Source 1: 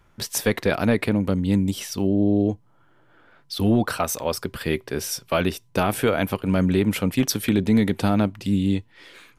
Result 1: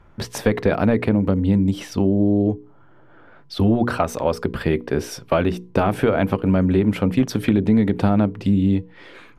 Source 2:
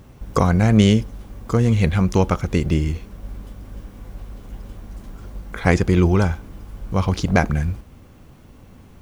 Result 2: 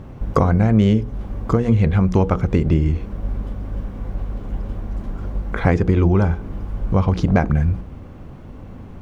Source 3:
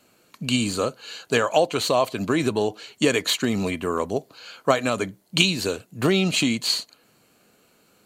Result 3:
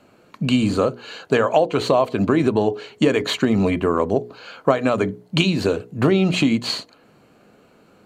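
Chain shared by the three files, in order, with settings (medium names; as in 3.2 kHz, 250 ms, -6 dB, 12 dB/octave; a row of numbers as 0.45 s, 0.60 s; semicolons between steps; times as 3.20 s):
low-pass 1.1 kHz 6 dB/octave; hum notches 60/120/180/240/300/360/420/480 Hz; compression 2.5:1, threshold -25 dBFS; normalise loudness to -20 LUFS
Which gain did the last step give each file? +9.0 dB, +9.5 dB, +10.0 dB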